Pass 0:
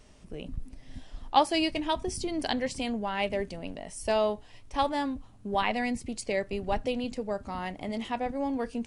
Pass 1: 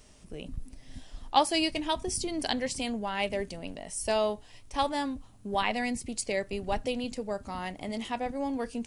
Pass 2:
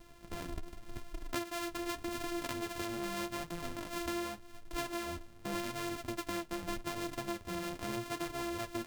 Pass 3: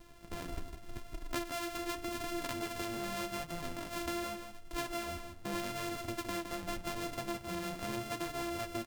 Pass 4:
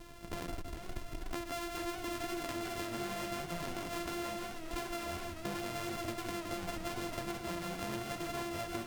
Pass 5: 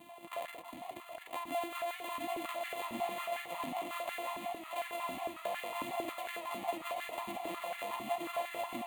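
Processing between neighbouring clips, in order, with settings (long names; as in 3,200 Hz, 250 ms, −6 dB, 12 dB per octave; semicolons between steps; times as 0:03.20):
high-shelf EQ 5,200 Hz +10 dB; level −1.5 dB
samples sorted by size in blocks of 128 samples; flanger 0.85 Hz, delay 5.9 ms, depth 6.5 ms, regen +33%; downward compressor 10 to 1, threshold −38 dBFS, peak gain reduction 17.5 dB; level +3.5 dB
single-tap delay 164 ms −7.5 dB
asymmetric clip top −43.5 dBFS; downward compressor, threshold −41 dBFS, peak gain reduction 7.5 dB; feedback echo with a swinging delay time 437 ms, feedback 57%, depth 124 cents, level −10 dB; level +5.5 dB
phaser with its sweep stopped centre 1,500 Hz, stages 6; echo with a time of its own for lows and highs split 2,100 Hz, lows 140 ms, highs 374 ms, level −13 dB; high-pass on a step sequencer 11 Hz 270–1,600 Hz; level +1 dB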